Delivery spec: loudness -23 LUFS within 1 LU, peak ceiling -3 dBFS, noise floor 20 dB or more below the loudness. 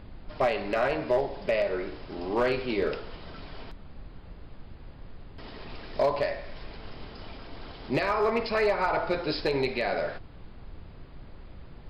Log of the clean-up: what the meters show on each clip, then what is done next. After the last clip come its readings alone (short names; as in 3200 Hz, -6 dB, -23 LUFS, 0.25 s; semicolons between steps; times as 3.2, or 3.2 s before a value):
clipped 0.2%; flat tops at -17.5 dBFS; noise floor -47 dBFS; noise floor target -49 dBFS; loudness -28.5 LUFS; peak -17.5 dBFS; loudness target -23.0 LUFS
-> clip repair -17.5 dBFS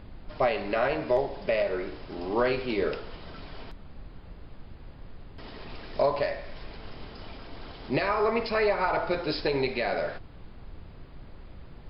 clipped 0.0%; noise floor -47 dBFS; noise floor target -49 dBFS
-> noise print and reduce 6 dB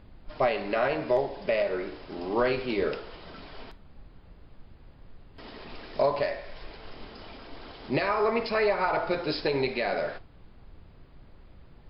noise floor -53 dBFS; loudness -28.5 LUFS; peak -12.5 dBFS; loudness target -23.0 LUFS
-> gain +5.5 dB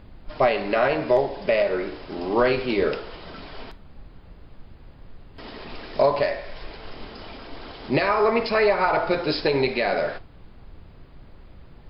loudness -23.0 LUFS; peak -7.0 dBFS; noise floor -47 dBFS